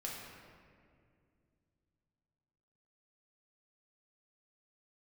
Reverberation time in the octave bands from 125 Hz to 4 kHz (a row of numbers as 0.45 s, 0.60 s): 3.8 s, 3.3 s, 2.6 s, 1.9 s, 1.9 s, 1.2 s